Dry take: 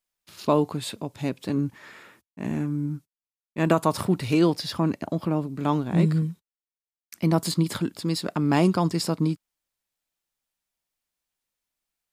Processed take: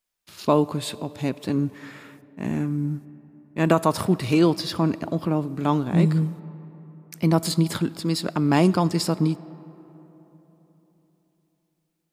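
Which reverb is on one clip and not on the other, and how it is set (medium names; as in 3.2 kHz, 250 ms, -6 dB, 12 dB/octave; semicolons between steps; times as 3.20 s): algorithmic reverb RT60 3.9 s, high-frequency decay 0.45×, pre-delay 20 ms, DRR 18.5 dB; trim +2 dB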